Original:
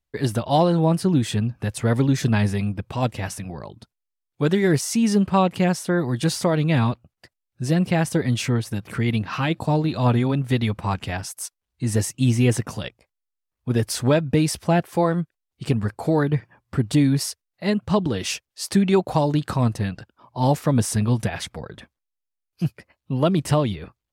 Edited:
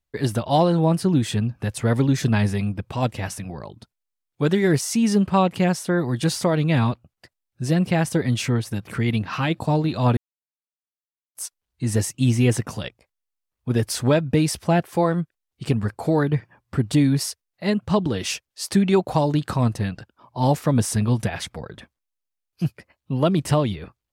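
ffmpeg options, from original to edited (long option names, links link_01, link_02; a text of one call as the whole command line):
ffmpeg -i in.wav -filter_complex "[0:a]asplit=3[link_01][link_02][link_03];[link_01]atrim=end=10.17,asetpts=PTS-STARTPTS,afade=type=out:start_time=10.166:duration=0.004:curve=hsin[link_04];[link_02]atrim=start=10.17:end=11.35,asetpts=PTS-STARTPTS,volume=0[link_05];[link_03]atrim=start=11.35,asetpts=PTS-STARTPTS,afade=type=in:duration=0.004:curve=hsin[link_06];[link_04][link_05][link_06]concat=n=3:v=0:a=1" out.wav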